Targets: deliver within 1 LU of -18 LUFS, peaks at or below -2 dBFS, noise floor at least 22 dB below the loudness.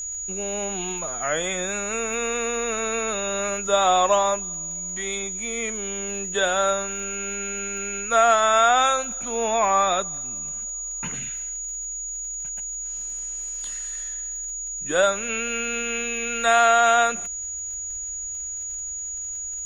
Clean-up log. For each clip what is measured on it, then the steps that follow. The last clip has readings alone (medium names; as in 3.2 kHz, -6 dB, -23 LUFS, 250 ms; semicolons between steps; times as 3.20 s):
tick rate 40 per s; steady tone 6.8 kHz; tone level -29 dBFS; loudness -23.5 LUFS; peak level -5.5 dBFS; loudness target -18.0 LUFS
-> de-click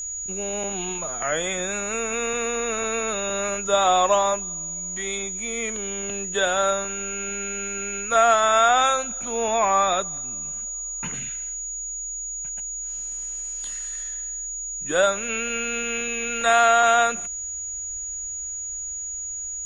tick rate 0.051 per s; steady tone 6.8 kHz; tone level -29 dBFS
-> band-stop 6.8 kHz, Q 30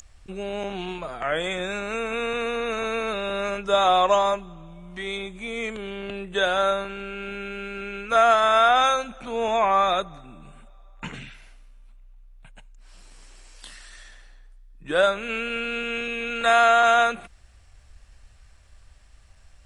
steady tone not found; loudness -23.0 LUFS; peak level -6.0 dBFS; loudness target -18.0 LUFS
-> trim +5 dB; peak limiter -2 dBFS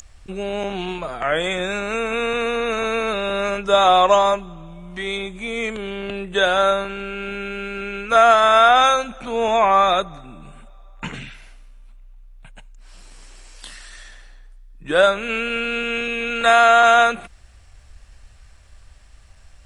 loudness -18.5 LUFS; peak level -2.0 dBFS; noise floor -48 dBFS